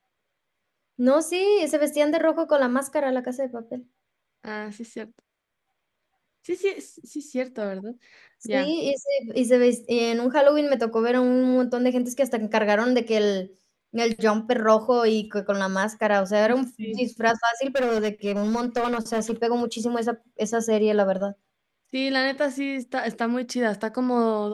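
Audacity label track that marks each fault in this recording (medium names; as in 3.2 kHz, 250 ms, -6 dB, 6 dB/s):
17.660000	19.340000	clipped -20 dBFS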